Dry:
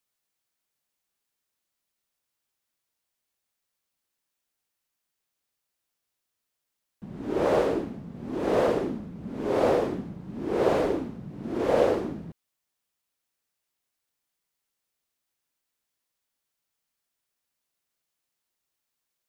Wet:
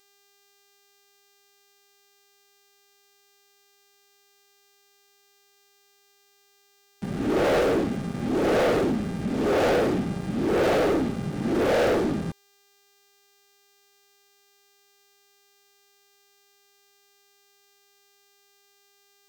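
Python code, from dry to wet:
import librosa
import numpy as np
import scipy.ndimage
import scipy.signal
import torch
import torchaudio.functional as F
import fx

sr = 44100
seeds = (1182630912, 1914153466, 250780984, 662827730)

y = fx.dmg_buzz(x, sr, base_hz=400.0, harmonics=25, level_db=-52.0, tilt_db=-6, odd_only=False)
y = fx.leveller(y, sr, passes=5)
y = fx.notch(y, sr, hz=1000.0, q=7.9)
y = y * librosa.db_to_amplitude(-8.5)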